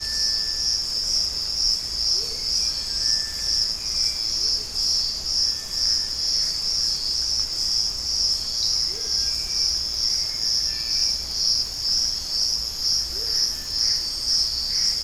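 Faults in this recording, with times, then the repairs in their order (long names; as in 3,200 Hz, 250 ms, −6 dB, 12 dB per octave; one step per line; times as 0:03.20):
surface crackle 32 per second −30 dBFS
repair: click removal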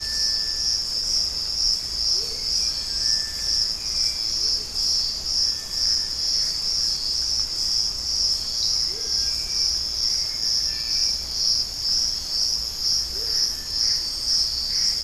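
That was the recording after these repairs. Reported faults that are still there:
none of them is left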